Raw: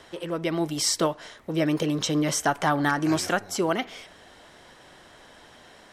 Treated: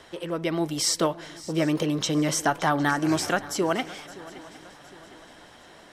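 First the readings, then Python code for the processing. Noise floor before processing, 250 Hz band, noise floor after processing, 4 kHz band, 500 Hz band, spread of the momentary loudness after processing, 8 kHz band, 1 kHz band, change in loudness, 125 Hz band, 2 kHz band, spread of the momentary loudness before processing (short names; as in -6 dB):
-52 dBFS, 0.0 dB, -50 dBFS, 0.0 dB, 0.0 dB, 17 LU, 0.0 dB, 0.0 dB, 0.0 dB, 0.0 dB, 0.0 dB, 8 LU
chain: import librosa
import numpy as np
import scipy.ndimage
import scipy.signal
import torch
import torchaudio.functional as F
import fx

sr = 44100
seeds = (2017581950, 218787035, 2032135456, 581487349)

y = fx.echo_swing(x, sr, ms=759, ratio=3, feedback_pct=42, wet_db=-19.0)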